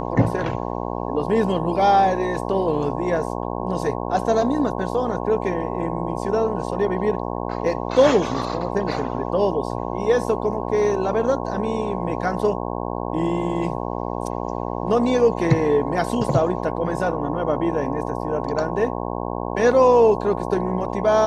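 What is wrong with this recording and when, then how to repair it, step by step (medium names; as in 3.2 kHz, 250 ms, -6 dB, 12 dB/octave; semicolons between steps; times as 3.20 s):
buzz 60 Hz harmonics 18 -27 dBFS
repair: de-hum 60 Hz, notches 18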